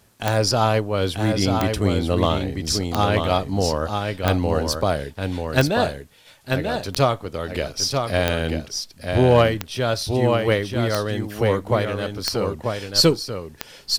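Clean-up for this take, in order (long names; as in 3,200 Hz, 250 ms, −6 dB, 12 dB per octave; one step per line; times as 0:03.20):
clipped peaks rebuilt −5.5 dBFS
click removal
downward expander −33 dBFS, range −21 dB
echo removal 939 ms −5 dB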